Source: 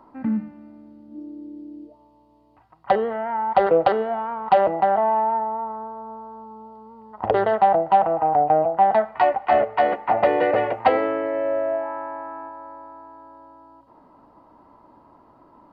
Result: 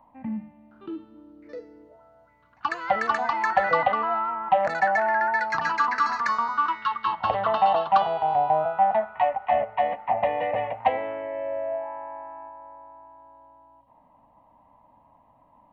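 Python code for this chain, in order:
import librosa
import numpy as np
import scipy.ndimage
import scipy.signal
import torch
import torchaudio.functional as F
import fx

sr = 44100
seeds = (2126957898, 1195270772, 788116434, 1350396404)

y = fx.fixed_phaser(x, sr, hz=1400.0, stages=6)
y = fx.echo_pitch(y, sr, ms=712, semitones=7, count=2, db_per_echo=-3.0)
y = y * 10.0 ** (-3.5 / 20.0)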